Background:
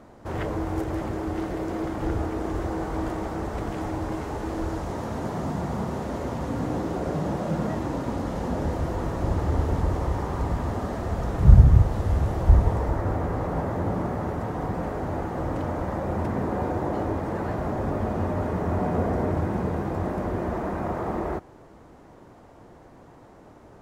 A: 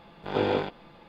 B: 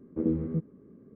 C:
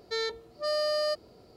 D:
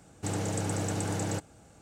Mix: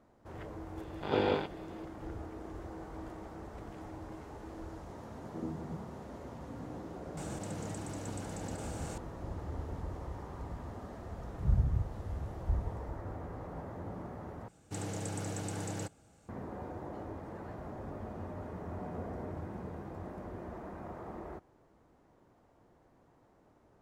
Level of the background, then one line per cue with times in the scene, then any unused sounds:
background -16 dB
0.77 add A -4 dB
5.17 add B -13 dB
7.17 add D -13 dB + fast leveller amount 100%
14.48 replace with D -7 dB
not used: C

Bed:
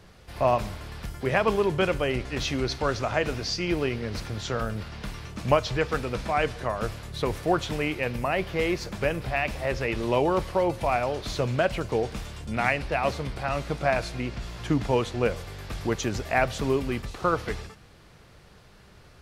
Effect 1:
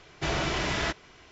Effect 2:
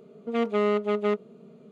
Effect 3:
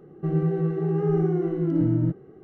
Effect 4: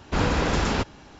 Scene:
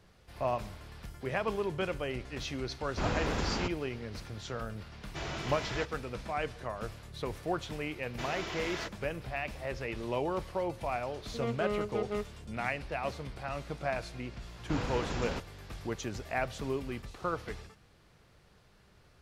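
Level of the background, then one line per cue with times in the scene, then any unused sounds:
bed -9.5 dB
2.85 add 4 -9.5 dB
4.93 add 1 -10 dB
7.96 add 1 -9.5 dB + HPF 220 Hz
11.07 add 2 -10 dB
14.57 add 4 -13 dB + rattling part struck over -26 dBFS, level -27 dBFS
not used: 3

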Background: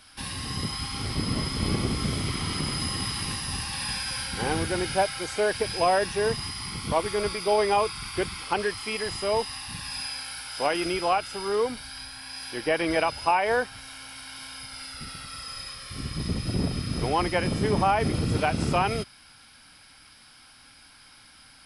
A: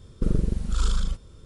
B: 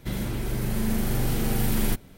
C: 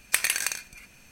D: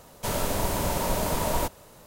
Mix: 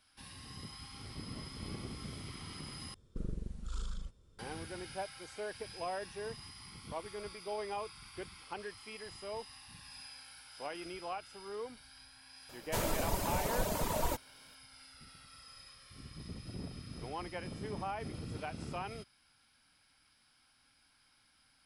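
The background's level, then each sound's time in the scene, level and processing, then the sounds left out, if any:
background -17 dB
2.94 replace with A -16.5 dB
12.49 add D -5 dB + reverb removal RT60 1.1 s
not used: B, C

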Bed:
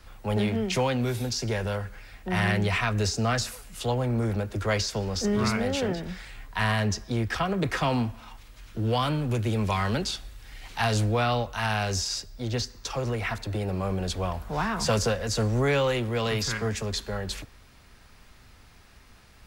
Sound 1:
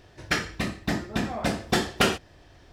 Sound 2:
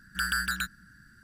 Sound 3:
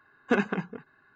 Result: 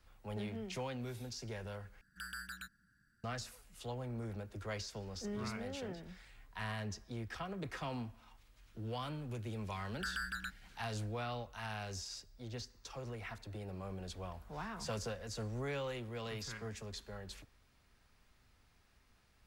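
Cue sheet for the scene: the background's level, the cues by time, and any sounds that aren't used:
bed -16 dB
2.01 replace with 2 -17 dB
9.84 add 2 -10.5 dB + LPF 4000 Hz 6 dB/oct
not used: 1, 3

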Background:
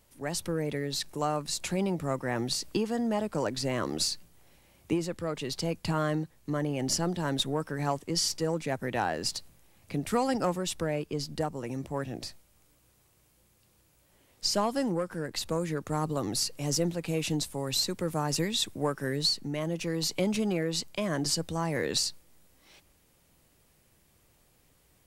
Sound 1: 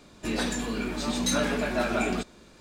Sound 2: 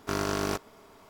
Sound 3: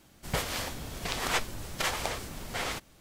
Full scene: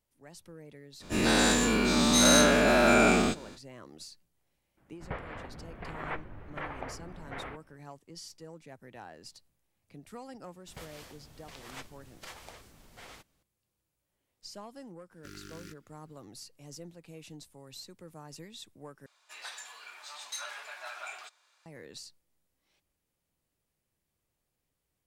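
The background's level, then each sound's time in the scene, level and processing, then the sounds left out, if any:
background -18 dB
0.99 add 1 -1 dB, fades 0.05 s + spectral dilation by 0.24 s
4.77 add 3 -6 dB + LPF 2100 Hz 24 dB/oct
10.43 add 3 -16.5 dB
15.16 add 2 -16 dB + elliptic band-stop 360–1400 Hz
19.06 replace with 1 -10.5 dB + HPF 840 Hz 24 dB/oct

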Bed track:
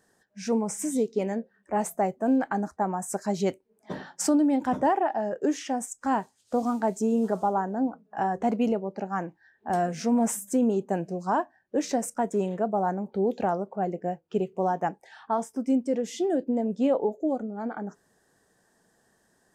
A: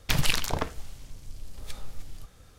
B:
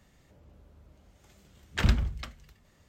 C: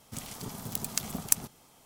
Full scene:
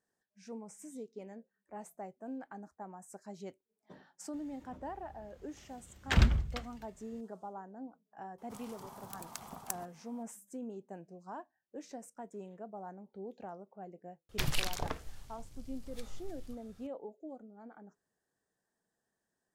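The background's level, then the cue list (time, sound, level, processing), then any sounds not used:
bed track -19.5 dB
4.33 add B -1 dB + Doppler distortion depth 0.12 ms
8.38 add C -15 dB + bell 950 Hz +15 dB 1.3 oct
14.29 add A -8.5 dB

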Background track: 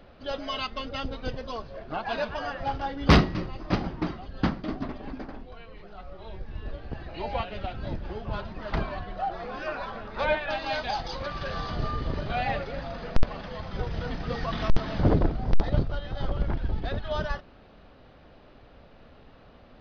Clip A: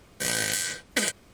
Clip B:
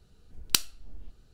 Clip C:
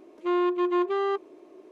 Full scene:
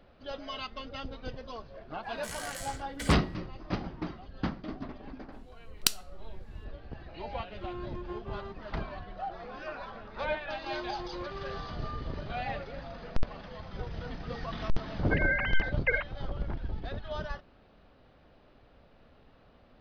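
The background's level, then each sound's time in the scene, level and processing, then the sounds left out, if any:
background track -7 dB
2.03 add A -15 dB
5.32 add B -2.5 dB
7.36 add C -17.5 dB
10.41 add C -17 dB
14.91 add A -2.5 dB + sine-wave speech

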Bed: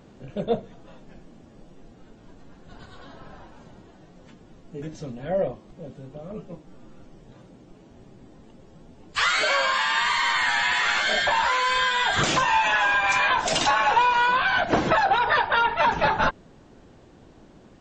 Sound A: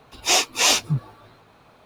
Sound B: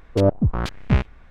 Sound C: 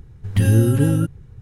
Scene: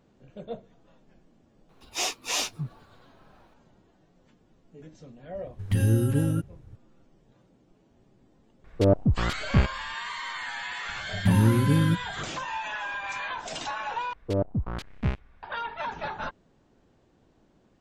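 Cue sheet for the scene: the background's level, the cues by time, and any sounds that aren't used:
bed -12.5 dB
1.69 add A -10.5 dB
5.35 add C -7.5 dB
8.64 add B -3 dB + notch 1000 Hz, Q 18
10.89 add C -7.5 dB + bell 190 Hz +12 dB 0.4 oct
14.13 replace with B -9 dB

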